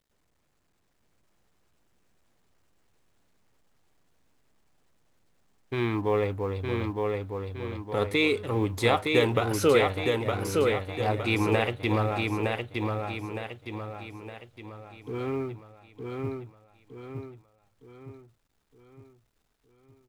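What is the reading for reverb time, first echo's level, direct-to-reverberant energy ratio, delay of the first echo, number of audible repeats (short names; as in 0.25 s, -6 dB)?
none, -3.5 dB, none, 0.913 s, 5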